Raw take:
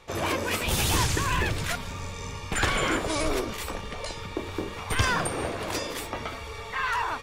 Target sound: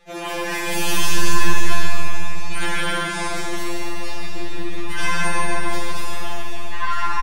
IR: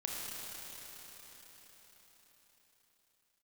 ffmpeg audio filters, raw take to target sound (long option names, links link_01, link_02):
-filter_complex "[0:a]asplit=2[link_01][link_02];[link_02]adelay=144,lowpass=frequency=4300:poles=1,volume=-4dB,asplit=2[link_03][link_04];[link_04]adelay=144,lowpass=frequency=4300:poles=1,volume=0.48,asplit=2[link_05][link_06];[link_06]adelay=144,lowpass=frequency=4300:poles=1,volume=0.48,asplit=2[link_07][link_08];[link_08]adelay=144,lowpass=frequency=4300:poles=1,volume=0.48,asplit=2[link_09][link_10];[link_10]adelay=144,lowpass=frequency=4300:poles=1,volume=0.48,asplit=2[link_11][link_12];[link_12]adelay=144,lowpass=frequency=4300:poles=1,volume=0.48[link_13];[link_01][link_03][link_05][link_07][link_09][link_11][link_13]amix=inputs=7:normalize=0[link_14];[1:a]atrim=start_sample=2205,asetrate=79380,aresample=44100[link_15];[link_14][link_15]afir=irnorm=-1:irlink=0,afftfilt=real='re*2.83*eq(mod(b,8),0)':imag='im*2.83*eq(mod(b,8),0)':win_size=2048:overlap=0.75,volume=7.5dB"